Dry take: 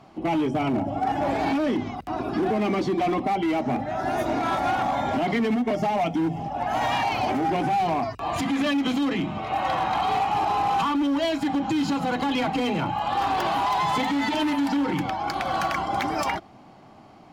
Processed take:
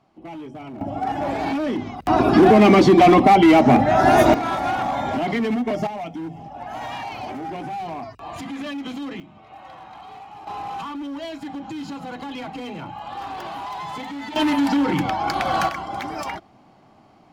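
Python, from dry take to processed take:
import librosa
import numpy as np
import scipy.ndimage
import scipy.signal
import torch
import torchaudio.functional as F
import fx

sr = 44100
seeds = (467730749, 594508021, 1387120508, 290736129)

y = fx.gain(x, sr, db=fx.steps((0.0, -12.0), (0.81, 0.0), (2.06, 12.0), (4.34, 1.0), (5.87, -7.0), (9.2, -17.0), (10.47, -8.0), (14.36, 4.5), (15.69, -3.5)))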